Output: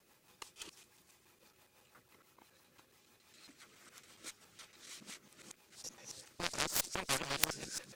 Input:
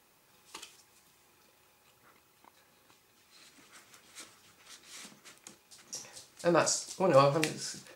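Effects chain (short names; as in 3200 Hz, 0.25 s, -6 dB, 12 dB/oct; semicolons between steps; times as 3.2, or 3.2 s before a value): local time reversal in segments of 0.139 s; rotary speaker horn 6 Hz; added harmonics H 3 -29 dB, 6 -27 dB, 7 -20 dB, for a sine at -10.5 dBFS; spectral compressor 4:1; gain +2 dB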